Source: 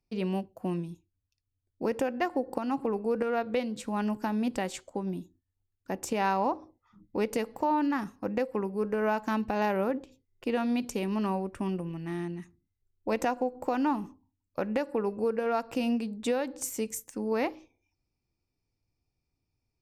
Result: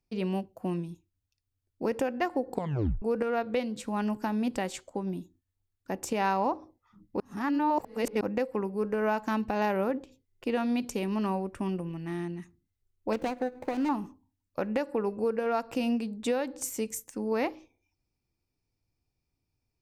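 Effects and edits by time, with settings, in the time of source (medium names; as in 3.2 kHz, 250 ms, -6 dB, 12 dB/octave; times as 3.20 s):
2.51 s: tape stop 0.51 s
7.20–8.21 s: reverse
13.13–13.89 s: median filter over 41 samples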